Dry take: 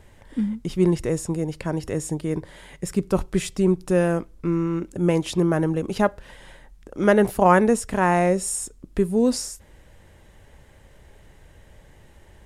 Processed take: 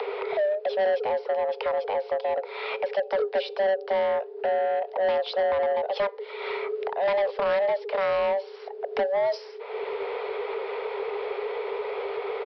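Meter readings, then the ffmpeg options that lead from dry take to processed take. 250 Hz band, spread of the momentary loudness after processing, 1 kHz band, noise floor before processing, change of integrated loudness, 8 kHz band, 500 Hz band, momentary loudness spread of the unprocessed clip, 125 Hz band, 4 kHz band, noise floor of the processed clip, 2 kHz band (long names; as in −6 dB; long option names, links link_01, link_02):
−23.5 dB, 7 LU, −2.5 dB, −52 dBFS, −4.5 dB, below −30 dB, +0.5 dB, 11 LU, below −30 dB, 0.0 dB, −41 dBFS, −2.5 dB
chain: -filter_complex "[0:a]acompressor=mode=upward:threshold=-24dB:ratio=2.5,bass=frequency=250:gain=-1,treble=frequency=4000:gain=-14,acrossover=split=200|3000[link_01][link_02][link_03];[link_02]acompressor=threshold=-36dB:ratio=4[link_04];[link_01][link_04][link_03]amix=inputs=3:normalize=0,afreqshift=390,aresample=11025,asoftclip=type=tanh:threshold=-26.5dB,aresample=44100,volume=7dB"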